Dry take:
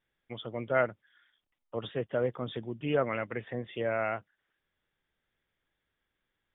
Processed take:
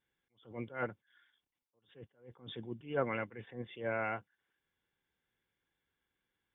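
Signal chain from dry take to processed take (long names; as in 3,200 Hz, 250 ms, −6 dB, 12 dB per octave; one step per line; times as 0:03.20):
notch comb filter 630 Hz
level that may rise only so fast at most 160 dB per second
level −2 dB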